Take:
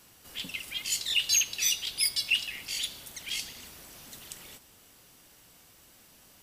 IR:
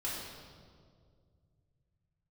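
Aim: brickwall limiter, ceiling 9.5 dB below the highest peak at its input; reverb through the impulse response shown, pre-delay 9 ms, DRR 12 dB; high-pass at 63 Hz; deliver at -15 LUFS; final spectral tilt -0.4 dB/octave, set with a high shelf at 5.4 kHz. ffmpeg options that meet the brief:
-filter_complex "[0:a]highpass=63,highshelf=f=5400:g=-5,alimiter=limit=0.0668:level=0:latency=1,asplit=2[s0][s1];[1:a]atrim=start_sample=2205,adelay=9[s2];[s1][s2]afir=irnorm=-1:irlink=0,volume=0.168[s3];[s0][s3]amix=inputs=2:normalize=0,volume=8.91"

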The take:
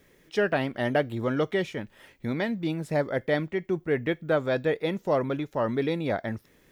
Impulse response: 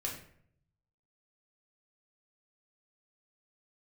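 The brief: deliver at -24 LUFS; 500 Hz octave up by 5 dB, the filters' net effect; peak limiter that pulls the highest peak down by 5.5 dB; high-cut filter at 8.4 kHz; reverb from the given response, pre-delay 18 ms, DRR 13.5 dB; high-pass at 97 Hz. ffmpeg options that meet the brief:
-filter_complex "[0:a]highpass=97,lowpass=8400,equalizer=f=500:t=o:g=6,alimiter=limit=0.2:level=0:latency=1,asplit=2[s0][s1];[1:a]atrim=start_sample=2205,adelay=18[s2];[s1][s2]afir=irnorm=-1:irlink=0,volume=0.168[s3];[s0][s3]amix=inputs=2:normalize=0,volume=1.26"

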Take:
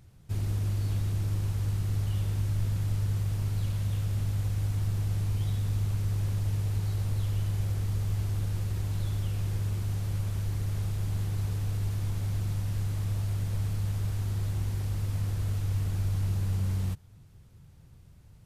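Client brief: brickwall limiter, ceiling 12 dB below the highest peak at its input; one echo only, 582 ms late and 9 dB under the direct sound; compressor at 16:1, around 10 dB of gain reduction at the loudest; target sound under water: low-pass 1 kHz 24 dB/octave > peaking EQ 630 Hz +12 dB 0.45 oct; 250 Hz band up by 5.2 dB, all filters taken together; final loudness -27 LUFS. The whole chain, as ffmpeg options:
-af "equalizer=f=250:t=o:g=8,acompressor=threshold=0.02:ratio=16,alimiter=level_in=5.31:limit=0.0631:level=0:latency=1,volume=0.188,lowpass=f=1000:w=0.5412,lowpass=f=1000:w=1.3066,equalizer=f=630:t=o:w=0.45:g=12,aecho=1:1:582:0.355,volume=7.5"

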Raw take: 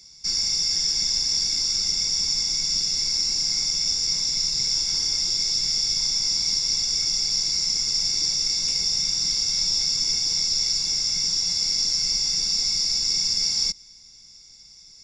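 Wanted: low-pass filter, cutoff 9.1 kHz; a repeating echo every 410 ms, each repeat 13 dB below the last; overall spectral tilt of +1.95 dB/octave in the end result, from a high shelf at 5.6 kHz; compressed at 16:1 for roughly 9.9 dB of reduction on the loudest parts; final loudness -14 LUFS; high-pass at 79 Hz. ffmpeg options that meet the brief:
-af "highpass=79,lowpass=9100,highshelf=f=5600:g=5.5,acompressor=threshold=0.0447:ratio=16,aecho=1:1:410|820|1230:0.224|0.0493|0.0108,volume=4.73"

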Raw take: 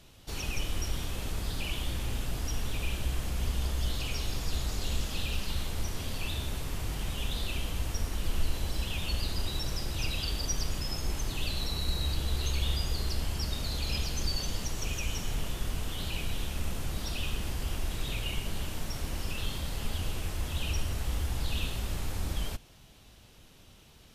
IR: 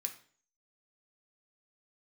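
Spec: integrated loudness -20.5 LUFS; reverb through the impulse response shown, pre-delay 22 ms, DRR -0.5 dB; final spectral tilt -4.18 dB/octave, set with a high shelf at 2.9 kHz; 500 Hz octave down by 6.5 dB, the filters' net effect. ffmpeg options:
-filter_complex "[0:a]equalizer=f=500:t=o:g=-8.5,highshelf=f=2900:g=-6.5,asplit=2[s0][s1];[1:a]atrim=start_sample=2205,adelay=22[s2];[s1][s2]afir=irnorm=-1:irlink=0,volume=1.33[s3];[s0][s3]amix=inputs=2:normalize=0,volume=5.01"

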